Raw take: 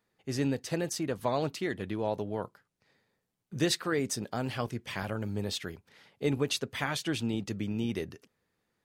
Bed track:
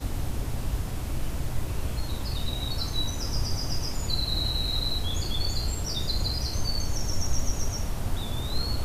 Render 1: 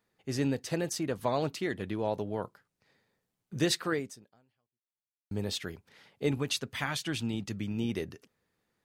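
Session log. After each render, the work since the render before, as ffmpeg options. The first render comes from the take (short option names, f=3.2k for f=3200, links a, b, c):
-filter_complex "[0:a]asettb=1/sr,asplit=3[a][b][c];[a]atrim=end=6.314[d];[b]atrim=start=6.31:end=7.78,asetpts=PTS-STARTPTS,afade=t=in:d=0.004:c=qsin,afade=t=out:st=1.466:d=0.004:c=qsin,equalizer=f=460:w=1.1:g=-5.5[e];[c]atrim=start=7.776[f];[d][e]acrossfade=d=0.004:c1=hsin:c2=qsin[g];[g][f]acrossfade=d=0.004:c1=qsin:c2=hsin,asplit=2[h][i];[h]atrim=end=5.31,asetpts=PTS-STARTPTS,afade=t=out:st=3.93:d=1.38:c=exp[j];[i]atrim=start=5.31,asetpts=PTS-STARTPTS,afade=t=in:d=0.004:c=hsin[k];[j][k]concat=n=2:v=0:a=1"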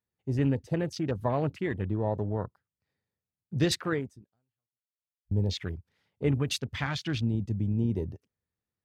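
-af "afwtdn=0.00708,equalizer=f=76:t=o:w=1.7:g=14"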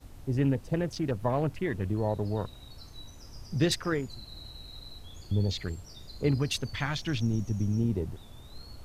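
-filter_complex "[1:a]volume=-18dB[a];[0:a][a]amix=inputs=2:normalize=0"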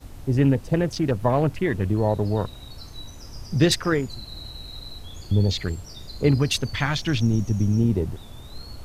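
-af "volume=7.5dB"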